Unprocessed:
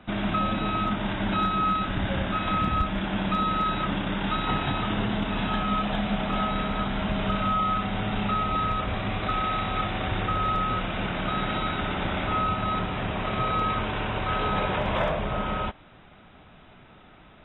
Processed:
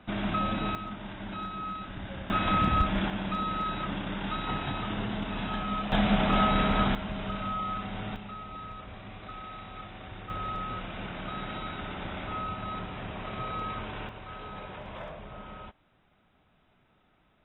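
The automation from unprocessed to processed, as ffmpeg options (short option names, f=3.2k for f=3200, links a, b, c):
-af "asetnsamples=n=441:p=0,asendcmd='0.75 volume volume -12dB;2.3 volume volume 0dB;3.1 volume volume -6dB;5.92 volume volume 2.5dB;6.95 volume volume -8dB;8.16 volume volume -15.5dB;10.3 volume volume -9dB;14.09 volume volume -15.5dB',volume=-3.5dB"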